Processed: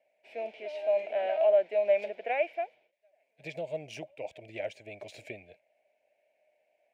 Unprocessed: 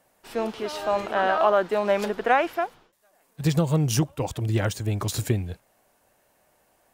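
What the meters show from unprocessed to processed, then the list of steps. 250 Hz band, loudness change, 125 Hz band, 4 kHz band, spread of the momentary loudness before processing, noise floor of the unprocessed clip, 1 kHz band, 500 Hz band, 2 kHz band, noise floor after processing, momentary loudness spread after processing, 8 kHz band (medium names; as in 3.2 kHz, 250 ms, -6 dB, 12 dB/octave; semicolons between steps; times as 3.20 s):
-22.5 dB, -6.0 dB, -29.0 dB, -14.5 dB, 9 LU, -66 dBFS, -13.0 dB, -3.0 dB, -10.5 dB, -76 dBFS, 20 LU, under -20 dB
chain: two resonant band-passes 1.2 kHz, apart 1.9 oct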